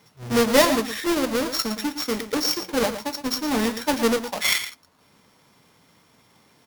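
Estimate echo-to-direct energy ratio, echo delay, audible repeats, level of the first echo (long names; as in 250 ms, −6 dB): −11.0 dB, 114 ms, 1, −11.0 dB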